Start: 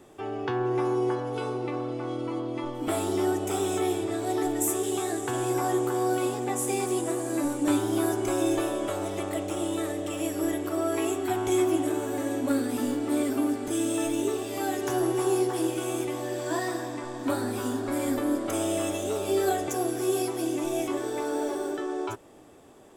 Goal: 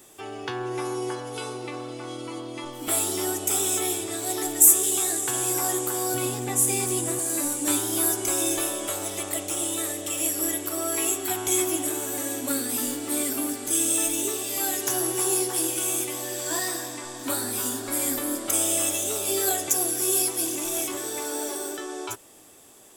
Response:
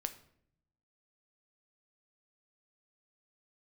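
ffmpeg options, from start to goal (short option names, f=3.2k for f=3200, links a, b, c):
-filter_complex "[0:a]asettb=1/sr,asplit=3[a][b][c];[a]atrim=end=6.144[d];[b]atrim=start=6.14:end=7.19,asetpts=PTS-STARTPTS,afade=t=in:d=0.004:c=qsin,afade=t=out:st=1.046:d=0.004:c=qsin,bass=f=250:g=11,treble=f=4k:g=-4[e];[c]atrim=start=7.186[f];[d][e]acrossfade=d=0.004:c1=hsin:c2=qsin[g];[g][f]acrossfade=d=0.004:c1=qsin:c2=hsin,asettb=1/sr,asplit=3[h][i][j];[h]atrim=end=20.464[k];[i]atrim=start=20.46:end=21.33,asetpts=PTS-STARTPTS,afade=t=in:d=0.004:c=qsin,afade=t=out:st=0.866:d=0.004:c=qsin,asoftclip=type=hard:threshold=-24dB[l];[j]atrim=start=21.326[m];[k][l]acrossfade=d=0.004:c1=hsin:c2=qsin[n];[n][m]acrossfade=d=0.004:c1=qsin:c2=hsin,crystalizer=i=7.5:c=0,volume=-5dB"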